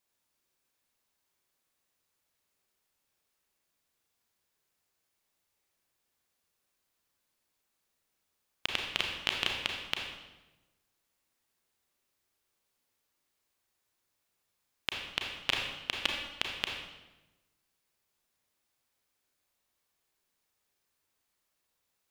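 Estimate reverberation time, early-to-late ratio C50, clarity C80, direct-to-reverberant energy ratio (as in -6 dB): 1.1 s, 3.0 dB, 5.0 dB, 0.5 dB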